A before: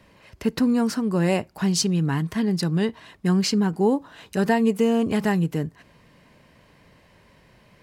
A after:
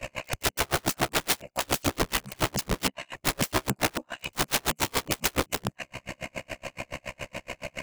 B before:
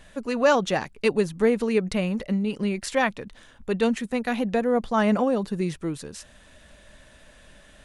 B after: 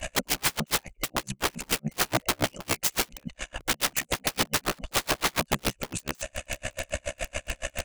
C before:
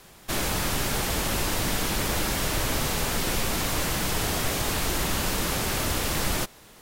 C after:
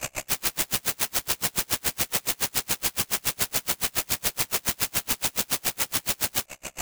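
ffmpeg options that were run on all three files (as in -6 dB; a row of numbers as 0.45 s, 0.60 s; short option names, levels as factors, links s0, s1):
-af "acompressor=threshold=0.00447:ratio=2,equalizer=f=160:t=o:w=1.6:g=-4.5,apsyclip=37.6,superequalizer=7b=0.447:8b=2.24:12b=2.51:13b=0.631:15b=2.51,aeval=exprs='val(0)*sin(2*PI*33*n/s)':c=same,aeval=exprs='(mod(2.82*val(0)+1,2)-1)/2.82':c=same,aeval=exprs='val(0)*pow(10,-38*(0.5-0.5*cos(2*PI*7.1*n/s))/20)':c=same,volume=0.473"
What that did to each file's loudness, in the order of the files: -6.5 LU, -4.5 LU, +1.0 LU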